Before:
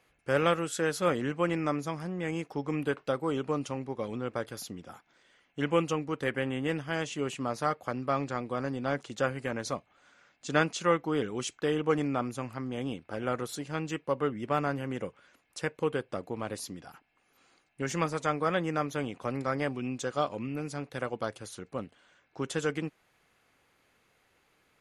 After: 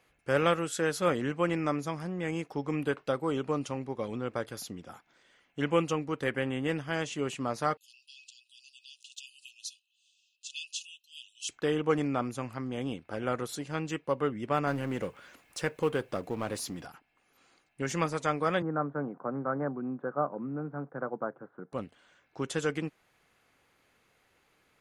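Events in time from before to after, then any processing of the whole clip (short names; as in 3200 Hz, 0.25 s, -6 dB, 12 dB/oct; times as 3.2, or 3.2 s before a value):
7.77–11.49 brick-wall FIR high-pass 2500 Hz
14.67–16.87 G.711 law mismatch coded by mu
18.62–21.73 Chebyshev band-pass 140–1500 Hz, order 4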